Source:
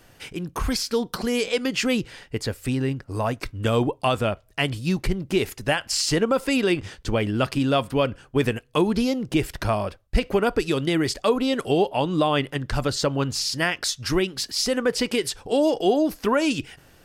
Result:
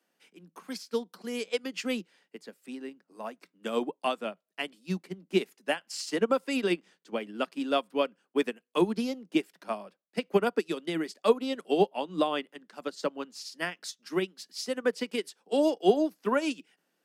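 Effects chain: steep high-pass 170 Hz 96 dB/octave; upward expansion 2.5:1, over -30 dBFS

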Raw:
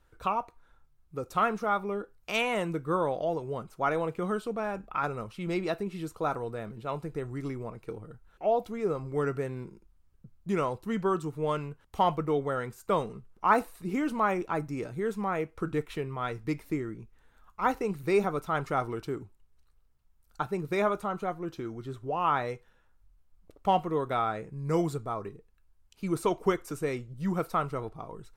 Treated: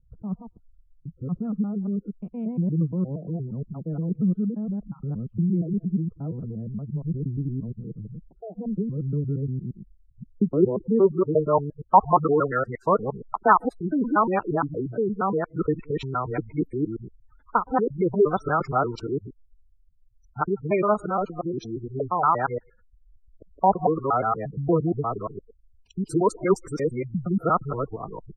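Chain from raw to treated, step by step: time reversed locally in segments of 117 ms; spectral gate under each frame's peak -15 dB strong; low-pass sweep 190 Hz -> 6.5 kHz, 9.94–13.80 s; trim +6.5 dB

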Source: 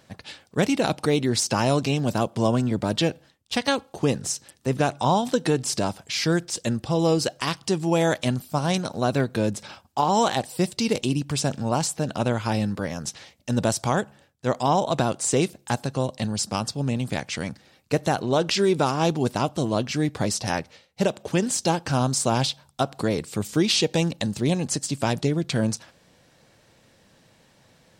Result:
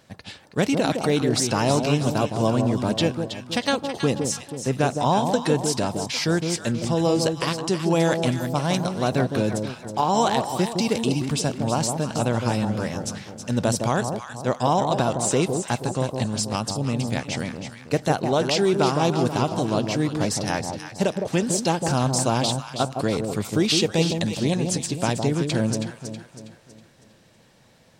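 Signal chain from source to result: echo whose repeats swap between lows and highs 161 ms, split 1 kHz, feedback 65%, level -5 dB

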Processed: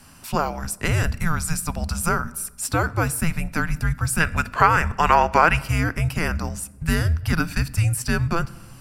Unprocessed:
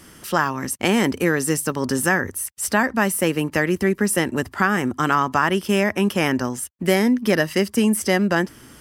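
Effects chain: 4.20–5.57 s: peaking EQ 2.3 kHz +11 dB 1.9 oct; frequency shift -330 Hz; on a send: reverberation RT60 1.1 s, pre-delay 3 ms, DRR 18 dB; on the sum: trim -2.5 dB

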